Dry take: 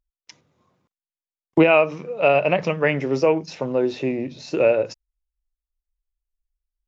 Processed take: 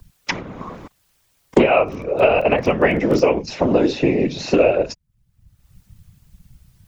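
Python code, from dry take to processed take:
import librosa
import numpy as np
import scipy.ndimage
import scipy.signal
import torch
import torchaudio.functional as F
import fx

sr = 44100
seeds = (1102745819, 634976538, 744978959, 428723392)

y = fx.whisperise(x, sr, seeds[0])
y = fx.dmg_crackle(y, sr, seeds[1], per_s=12.0, level_db=-27.0, at=(1.77, 3.23), fade=0.02)
y = fx.band_squash(y, sr, depth_pct=100)
y = y * librosa.db_to_amplitude(2.5)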